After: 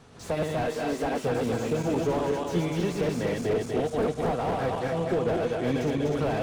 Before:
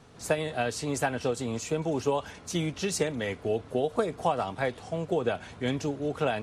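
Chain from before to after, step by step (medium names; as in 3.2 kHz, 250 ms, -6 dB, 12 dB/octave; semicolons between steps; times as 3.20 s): backward echo that repeats 122 ms, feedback 73%, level -3 dB; 0.65–1.24 s: high-pass 200 Hz 24 dB/octave; slew-rate limiter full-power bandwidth 32 Hz; trim +1.5 dB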